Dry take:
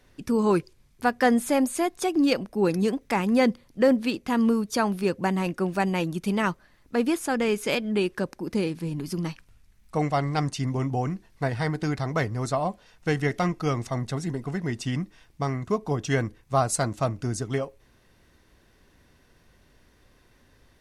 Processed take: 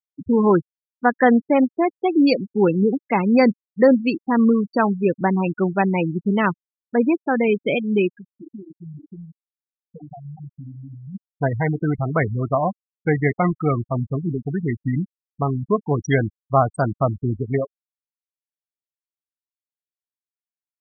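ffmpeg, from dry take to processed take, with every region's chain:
-filter_complex "[0:a]asettb=1/sr,asplit=3[s0][s1][s2];[s0]atrim=end=8.164[s3];[s1]atrim=start=8.16:end=11.15,asetpts=PTS-STARTPTS,afade=t=in:d=0.004:c=qsin,afade=t=out:st=2.986:d=0.004:c=qsin,adynamicequalizer=threshold=0.01:dfrequency=650:dqfactor=1.1:tfrequency=650:tqfactor=1.1:attack=5:release=100:ratio=0.375:range=3:mode=cutabove:tftype=bell,acompressor=threshold=0.0112:ratio=4:attack=3.2:release=140:knee=1:detection=peak[s4];[s2]atrim=start=11.146[s5];[s3][s4]acrossfade=d=0.004:c1=hsin:c2=qsin[s6];[s6][s5]acrossfade=d=0.004:c1=qsin:c2=hsin,deesser=0.7,afftfilt=real='re*gte(hypot(re,im),0.0794)':imag='im*gte(hypot(re,im),0.0794)':win_size=1024:overlap=0.75,highshelf=f=6300:g=10,volume=2"

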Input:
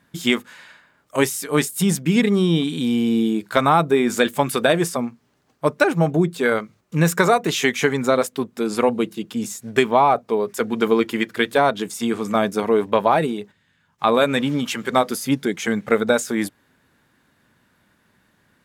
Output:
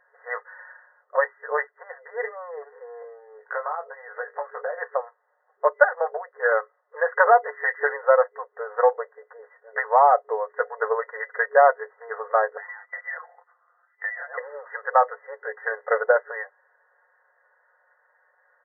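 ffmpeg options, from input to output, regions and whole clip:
-filter_complex "[0:a]asettb=1/sr,asplit=3[s0][s1][s2];[s0]atrim=end=3.024[s3];[s1]atrim=start=3.02:end=4.78,asetpts=PTS-STARTPTS,afade=t=in:d=0.004:c=qsin,afade=t=out:st=1.756:d=0.004:c=qsin,lowshelf=f=240:t=q:w=1.5:g=-9.5,acompressor=threshold=0.0562:ratio=12:attack=3.2:release=140:knee=1:detection=peak,asplit=2[s4][s5];[s5]adelay=19,volume=0.531[s6];[s4][s6]amix=inputs=2:normalize=0,atrim=end_sample=77616[s7];[s2]atrim=start=4.776[s8];[s3][s7]acrossfade=d=0.004:c1=hsin:c2=qsin[s9];[s9][s8]acrossfade=d=0.004:c1=qsin:c2=hsin,asettb=1/sr,asplit=3[s10][s11][s12];[s10]atrim=end=12.574[s13];[s11]atrim=start=12.57:end=14.38,asetpts=PTS-STARTPTS,afade=t=in:d=0.004:c=qsin,afade=t=out:st=1.806:d=0.004:c=qsin,aecho=1:1:5.6:0.91,atrim=end_sample=79821,acompressor=threshold=0.0251:ratio=2:attack=3.2:release=140:knee=1:detection=peak,lowpass=f=2600:t=q:w=0.5098,lowpass=f=2600:t=q:w=0.6013,lowpass=f=2600:t=q:w=0.9,lowpass=f=2600:t=q:w=2.563,afreqshift=-3000[s14];[s12]atrim=start=14.376[s15];[s13][s14]acrossfade=d=0.004:c1=hsin:c2=qsin[s16];[s16][s15]acrossfade=d=0.004:c1=qsin:c2=hsin,afftfilt=real='re*between(b*sr/4096,430,2000)':imag='im*between(b*sr/4096,430,2000)':win_size=4096:overlap=0.75,aecho=1:1:5.5:0.57"

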